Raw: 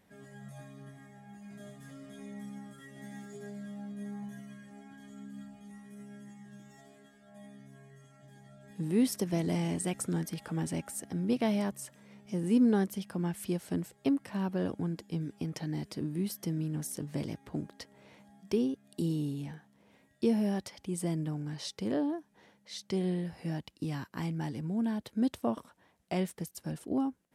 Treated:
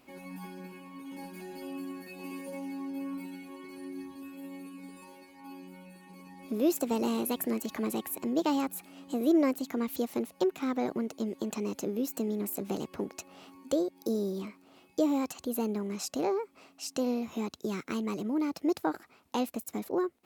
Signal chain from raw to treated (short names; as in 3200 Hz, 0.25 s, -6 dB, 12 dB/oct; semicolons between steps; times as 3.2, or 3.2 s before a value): bell 85 Hz -8.5 dB 0.54 oct; in parallel at -1 dB: compressor, threshold -41 dBFS, peak gain reduction 18 dB; on the sum: speed mistake 33 rpm record played at 45 rpm